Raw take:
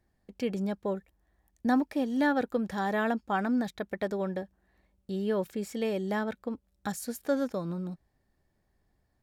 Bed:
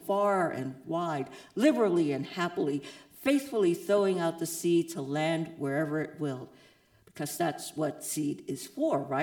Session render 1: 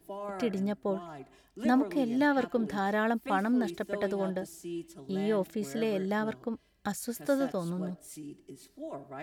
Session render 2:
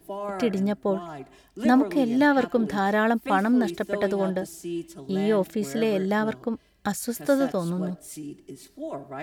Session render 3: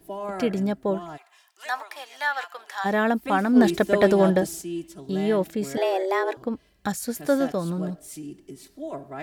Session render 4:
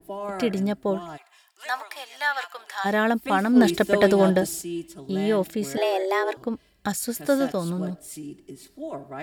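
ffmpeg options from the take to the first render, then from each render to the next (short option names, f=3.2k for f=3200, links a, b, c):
-filter_complex "[1:a]volume=-12.5dB[a];[0:a][a]amix=inputs=2:normalize=0"
-af "volume=6.5dB"
-filter_complex "[0:a]asplit=3[a][b][c];[a]afade=t=out:st=1.16:d=0.02[d];[b]highpass=f=880:w=0.5412,highpass=f=880:w=1.3066,afade=t=in:st=1.16:d=0.02,afade=t=out:st=2.84:d=0.02[e];[c]afade=t=in:st=2.84:d=0.02[f];[d][e][f]amix=inputs=3:normalize=0,asplit=3[g][h][i];[g]afade=t=out:st=3.55:d=0.02[j];[h]acontrast=87,afade=t=in:st=3.55:d=0.02,afade=t=out:st=4.61:d=0.02[k];[i]afade=t=in:st=4.61:d=0.02[l];[j][k][l]amix=inputs=3:normalize=0,asettb=1/sr,asplit=3[m][n][o];[m]atrim=end=5.774[p];[n]atrim=start=5.77:end=6.37,asetpts=PTS-STARTPTS,afade=t=in:d=0.004:c=qsin,afade=t=out:st=0.596:d=0.004:c=qsin,afreqshift=190[q];[o]atrim=start=6.366[r];[p][q]acrossfade=d=0.004:c1=hsin:c2=qsin[s];[s][r]acrossfade=d=0.004:c1=qsin:c2=hsin"
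-af "bandreject=f=6.1k:w=14,adynamicequalizer=threshold=0.0141:dfrequency=2100:dqfactor=0.7:tfrequency=2100:tqfactor=0.7:attack=5:release=100:ratio=0.375:range=2:mode=boostabove:tftype=highshelf"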